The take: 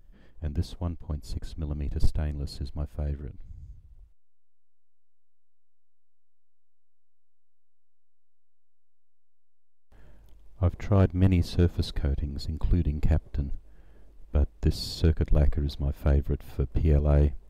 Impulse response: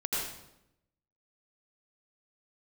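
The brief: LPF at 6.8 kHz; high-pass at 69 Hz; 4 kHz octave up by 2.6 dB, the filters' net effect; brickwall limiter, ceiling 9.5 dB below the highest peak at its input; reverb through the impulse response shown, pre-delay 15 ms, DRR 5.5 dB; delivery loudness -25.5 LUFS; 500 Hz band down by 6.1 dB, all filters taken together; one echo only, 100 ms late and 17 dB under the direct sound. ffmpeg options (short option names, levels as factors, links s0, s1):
-filter_complex "[0:a]highpass=69,lowpass=6800,equalizer=f=500:t=o:g=-8,equalizer=f=4000:t=o:g=3.5,alimiter=limit=0.0794:level=0:latency=1,aecho=1:1:100:0.141,asplit=2[s0][s1];[1:a]atrim=start_sample=2205,adelay=15[s2];[s1][s2]afir=irnorm=-1:irlink=0,volume=0.251[s3];[s0][s3]amix=inputs=2:normalize=0,volume=2.37"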